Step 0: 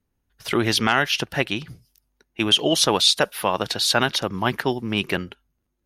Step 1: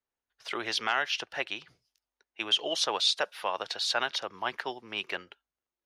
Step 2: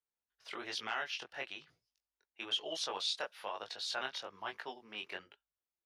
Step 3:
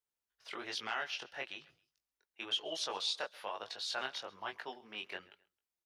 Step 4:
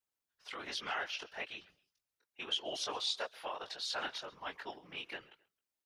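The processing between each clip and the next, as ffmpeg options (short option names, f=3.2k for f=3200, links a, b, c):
-filter_complex "[0:a]acrossover=split=440 7400:gain=0.1 1 0.112[a][b][c];[a][b][c]amix=inputs=3:normalize=0,volume=-8dB"
-af "flanger=delay=18.5:depth=4.6:speed=1.1,volume=-6.5dB"
-af "aecho=1:1:133|266:0.0708|0.0241"
-af "afftfilt=real='hypot(re,im)*cos(2*PI*random(0))':imag='hypot(re,im)*sin(2*PI*random(1))':win_size=512:overlap=0.75,volume=6dB"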